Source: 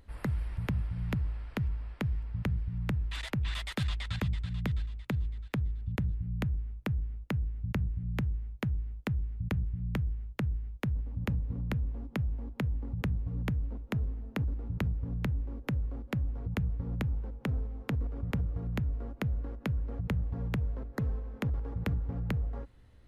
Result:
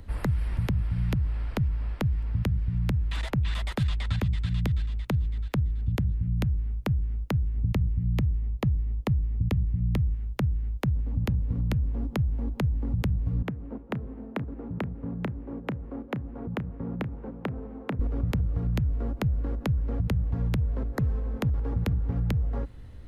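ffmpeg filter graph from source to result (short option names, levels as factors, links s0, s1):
-filter_complex "[0:a]asettb=1/sr,asplit=3[s0][s1][s2];[s0]atrim=end=7.564[s3];[s1]atrim=start=7.56:end=10.14,asetpts=PTS-STARTPTS,afade=t=in:d=0.004:c=qsin,afade=t=out:st=2.576:d=0.004:c=qsin,asuperstop=centerf=1500:order=4:qfactor=5.5,tiltshelf=f=1300:g=3.5[s4];[s2]atrim=start=10.136[s5];[s3][s4]acrossfade=d=0.004:c1=hsin:c2=qsin[s6];[s6][s5]acrossfade=d=0.004:c1=qsin:c2=hsin,asettb=1/sr,asplit=3[s7][s8][s9];[s7]atrim=end=13.424[s10];[s8]atrim=start=13.42:end=17.99,asetpts=PTS-STARTPTS,afade=t=in:d=0.004:c=qsin,afade=t=out:st=4.566:d=0.004:c=qsin,acrossover=split=180 2400:gain=0.0708 1 0.178[s11][s12][s13];[s11][s12][s13]amix=inputs=3:normalize=0,aecho=1:1:473:0.251,atrim=end_sample=201537[s14];[s9]atrim=start=17.986[s15];[s10][s14]acrossfade=d=0.004:c1=hsin:c2=qsin[s16];[s16][s15]acrossfade=d=0.004:c1=qsin:c2=hsin,lowshelf=f=340:g=6.5,acrossover=split=110|1200[s17][s18][s19];[s17]acompressor=threshold=0.0178:ratio=4[s20];[s18]acompressor=threshold=0.0112:ratio=4[s21];[s19]acompressor=threshold=0.00398:ratio=4[s22];[s20][s21][s22]amix=inputs=3:normalize=0,volume=2.51"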